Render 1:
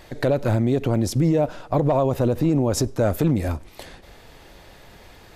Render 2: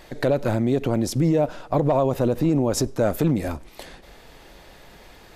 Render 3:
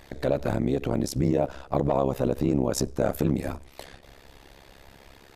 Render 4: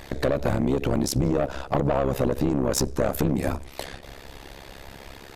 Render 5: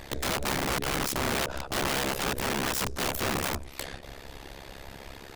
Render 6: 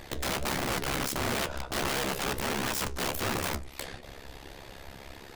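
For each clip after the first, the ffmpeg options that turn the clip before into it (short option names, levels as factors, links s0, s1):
-af "equalizer=f=94:w=2.5:g=-8.5"
-af "tremolo=f=68:d=0.947"
-af "aeval=exprs='(tanh(10*val(0)+0.3)-tanh(0.3))/10':c=same,acompressor=threshold=0.0398:ratio=6,volume=2.82"
-af "aeval=exprs='(mod(11.9*val(0)+1,2)-1)/11.9':c=same,volume=0.841"
-af "flanger=delay=7.9:depth=8.9:regen=64:speed=1.5:shape=triangular,volume=1.33"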